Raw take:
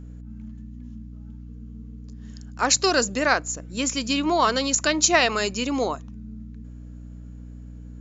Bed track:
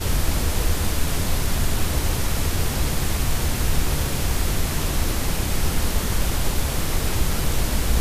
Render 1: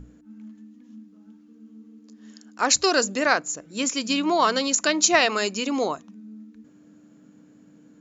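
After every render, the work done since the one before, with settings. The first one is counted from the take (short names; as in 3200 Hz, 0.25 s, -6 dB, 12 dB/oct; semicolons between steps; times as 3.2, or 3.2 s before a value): notches 60/120/180/240 Hz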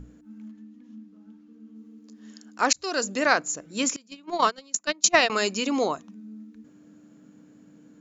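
0.51–1.76 air absorption 71 m; 2.73–3.44 fade in equal-power; 3.96–5.3 gate -20 dBFS, range -27 dB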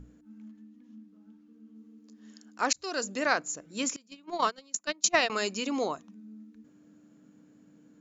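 gain -5.5 dB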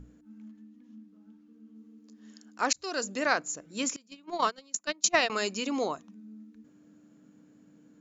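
nothing audible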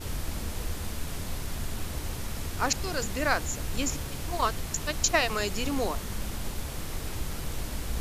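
add bed track -12 dB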